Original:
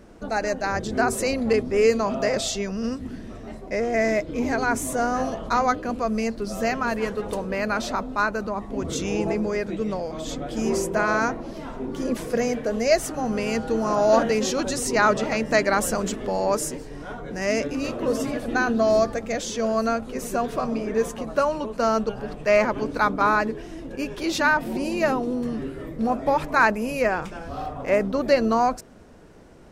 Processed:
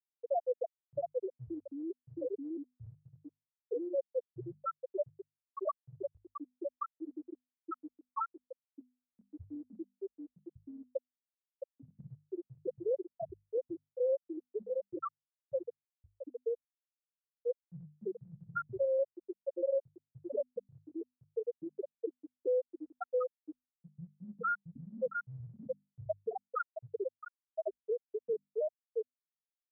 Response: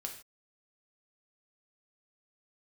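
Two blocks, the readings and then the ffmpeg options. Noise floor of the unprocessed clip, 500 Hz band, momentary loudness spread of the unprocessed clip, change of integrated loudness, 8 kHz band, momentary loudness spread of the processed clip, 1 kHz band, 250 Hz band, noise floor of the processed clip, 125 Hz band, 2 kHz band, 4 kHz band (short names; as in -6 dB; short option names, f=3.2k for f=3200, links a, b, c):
-38 dBFS, -13.5 dB, 10 LU, -15.5 dB, under -40 dB, 17 LU, -19.5 dB, -20.5 dB, under -85 dBFS, -18.0 dB, -24.5 dB, under -40 dB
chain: -af "acompressor=threshold=-30dB:ratio=8,adynamicequalizer=threshold=0.00794:dfrequency=680:dqfactor=0.71:tfrequency=680:tqfactor=0.71:attack=5:release=100:ratio=0.375:range=2:mode=cutabove:tftype=bell,afftfilt=real='re*gte(hypot(re,im),0.126)':imag='im*gte(hypot(re,im),0.126)':win_size=1024:overlap=0.75,highpass=f=260:t=q:w=0.5412,highpass=f=260:t=q:w=1.307,lowpass=f=2.7k:t=q:w=0.5176,lowpass=f=2.7k:t=q:w=0.7071,lowpass=f=2.7k:t=q:w=1.932,afreqshift=-120,aecho=1:1:665|1330|1995|2660|3325:0.668|0.241|0.0866|0.0312|0.0112,afftfilt=real='re*gte(hypot(re,im),0.126)':imag='im*gte(hypot(re,im),0.126)':win_size=1024:overlap=0.75,alimiter=level_in=11.5dB:limit=-24dB:level=0:latency=1:release=38,volume=-11.5dB,lowshelf=f=350:t=q:w=1.5:g=-10.5,bandreject=f=50:t=h:w=6,bandreject=f=100:t=h:w=6,bandreject=f=150:t=h:w=6,bandreject=f=200:t=h:w=6,bandreject=f=250:t=h:w=6,volume=8dB"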